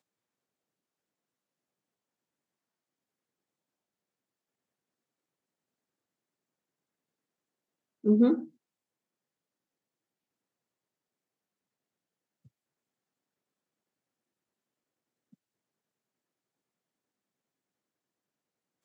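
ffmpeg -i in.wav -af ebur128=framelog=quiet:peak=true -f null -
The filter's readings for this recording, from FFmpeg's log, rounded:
Integrated loudness:
  I:         -26.0 LUFS
  Threshold: -39.6 LUFS
Loudness range:
  LRA:         3.6 LU
  Threshold: -52.8 LUFS
  LRA low:   -35.9 LUFS
  LRA high:  -32.3 LUFS
True peak:
  Peak:      -12.5 dBFS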